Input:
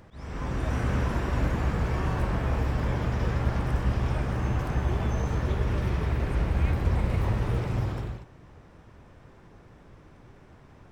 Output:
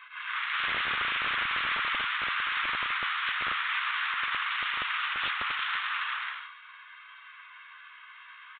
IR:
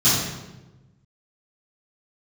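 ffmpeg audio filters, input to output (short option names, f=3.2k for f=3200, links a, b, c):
-filter_complex "[0:a]aecho=1:1:2.4:0.91,asetrate=56007,aresample=44100,flanger=delay=7.8:depth=8.5:regen=26:speed=0.42:shape=sinusoidal,aeval=exprs='0.266*sin(PI/2*10*val(0)/0.266)':c=same,asuperpass=centerf=2600:order=12:qfactor=0.57,asplit=3[a][b][c];[b]adelay=83,afreqshift=-31,volume=-23.5dB[d];[c]adelay=166,afreqshift=-62,volume=-32.6dB[e];[a][d][e]amix=inputs=3:normalize=0,asplit=2[f][g];[1:a]atrim=start_sample=2205[h];[g][h]afir=irnorm=-1:irlink=0,volume=-33dB[i];[f][i]amix=inputs=2:normalize=0,aeval=exprs='(mod(3.35*val(0)+1,2)-1)/3.35':c=same,aresample=8000,aresample=44100,volume=-9dB"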